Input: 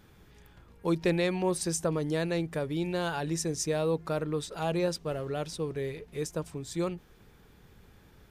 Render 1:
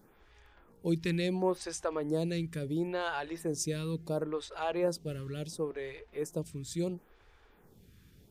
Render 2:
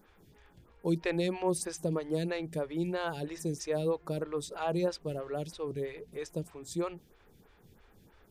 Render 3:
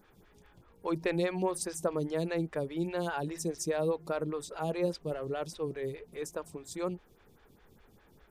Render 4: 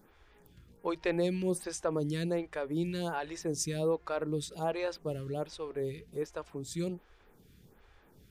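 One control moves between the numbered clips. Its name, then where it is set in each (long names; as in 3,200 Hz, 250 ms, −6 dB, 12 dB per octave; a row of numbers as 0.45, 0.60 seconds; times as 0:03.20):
phaser with staggered stages, speed: 0.72, 3.1, 4.9, 1.3 Hertz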